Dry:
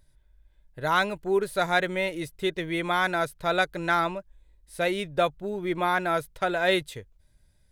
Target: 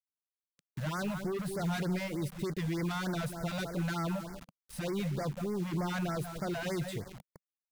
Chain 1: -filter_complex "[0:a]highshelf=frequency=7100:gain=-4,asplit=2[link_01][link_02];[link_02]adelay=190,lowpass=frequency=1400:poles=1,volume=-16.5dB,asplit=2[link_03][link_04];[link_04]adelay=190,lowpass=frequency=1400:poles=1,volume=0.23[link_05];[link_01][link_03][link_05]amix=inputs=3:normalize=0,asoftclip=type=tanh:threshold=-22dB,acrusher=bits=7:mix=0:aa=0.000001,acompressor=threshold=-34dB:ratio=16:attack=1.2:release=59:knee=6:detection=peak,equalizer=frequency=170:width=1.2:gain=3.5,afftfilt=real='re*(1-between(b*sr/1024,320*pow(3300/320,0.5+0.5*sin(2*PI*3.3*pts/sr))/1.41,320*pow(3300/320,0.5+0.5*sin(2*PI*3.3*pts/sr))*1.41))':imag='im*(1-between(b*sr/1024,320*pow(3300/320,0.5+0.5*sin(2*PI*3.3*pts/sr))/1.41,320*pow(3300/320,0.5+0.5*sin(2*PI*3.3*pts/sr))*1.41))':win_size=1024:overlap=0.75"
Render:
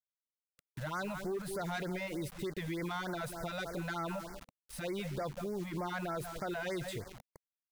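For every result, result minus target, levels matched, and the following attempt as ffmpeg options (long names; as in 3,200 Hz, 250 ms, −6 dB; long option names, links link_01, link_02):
soft clipping: distortion −7 dB; 125 Hz band −3.5 dB
-filter_complex "[0:a]highshelf=frequency=7100:gain=-4,asplit=2[link_01][link_02];[link_02]adelay=190,lowpass=frequency=1400:poles=1,volume=-16.5dB,asplit=2[link_03][link_04];[link_04]adelay=190,lowpass=frequency=1400:poles=1,volume=0.23[link_05];[link_01][link_03][link_05]amix=inputs=3:normalize=0,asoftclip=type=tanh:threshold=-32.5dB,acrusher=bits=7:mix=0:aa=0.000001,acompressor=threshold=-34dB:ratio=16:attack=1.2:release=59:knee=6:detection=peak,equalizer=frequency=170:width=1.2:gain=3.5,afftfilt=real='re*(1-between(b*sr/1024,320*pow(3300/320,0.5+0.5*sin(2*PI*3.3*pts/sr))/1.41,320*pow(3300/320,0.5+0.5*sin(2*PI*3.3*pts/sr))*1.41))':imag='im*(1-between(b*sr/1024,320*pow(3300/320,0.5+0.5*sin(2*PI*3.3*pts/sr))/1.41,320*pow(3300/320,0.5+0.5*sin(2*PI*3.3*pts/sr))*1.41))':win_size=1024:overlap=0.75"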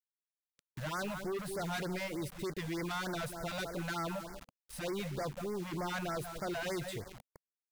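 125 Hz band −4.0 dB
-filter_complex "[0:a]highshelf=frequency=7100:gain=-4,asplit=2[link_01][link_02];[link_02]adelay=190,lowpass=frequency=1400:poles=1,volume=-16.5dB,asplit=2[link_03][link_04];[link_04]adelay=190,lowpass=frequency=1400:poles=1,volume=0.23[link_05];[link_01][link_03][link_05]amix=inputs=3:normalize=0,asoftclip=type=tanh:threshold=-32.5dB,acrusher=bits=7:mix=0:aa=0.000001,acompressor=threshold=-34dB:ratio=16:attack=1.2:release=59:knee=6:detection=peak,equalizer=frequency=170:width=1.2:gain=11.5,afftfilt=real='re*(1-between(b*sr/1024,320*pow(3300/320,0.5+0.5*sin(2*PI*3.3*pts/sr))/1.41,320*pow(3300/320,0.5+0.5*sin(2*PI*3.3*pts/sr))*1.41))':imag='im*(1-between(b*sr/1024,320*pow(3300/320,0.5+0.5*sin(2*PI*3.3*pts/sr))/1.41,320*pow(3300/320,0.5+0.5*sin(2*PI*3.3*pts/sr))*1.41))':win_size=1024:overlap=0.75"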